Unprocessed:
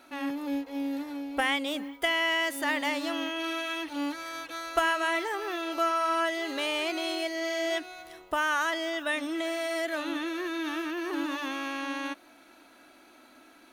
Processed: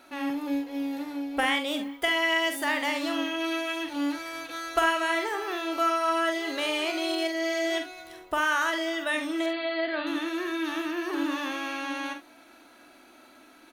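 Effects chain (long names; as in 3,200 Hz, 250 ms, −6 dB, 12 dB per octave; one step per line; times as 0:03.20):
0:09.46–0:10.07: linear-phase brick-wall low-pass 4,900 Hz
ambience of single reflections 46 ms −7.5 dB, 70 ms −13.5 dB
level +1 dB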